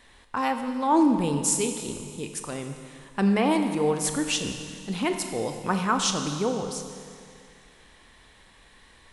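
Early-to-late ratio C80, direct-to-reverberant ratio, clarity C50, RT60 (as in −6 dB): 7.5 dB, 5.5 dB, 6.5 dB, 2.3 s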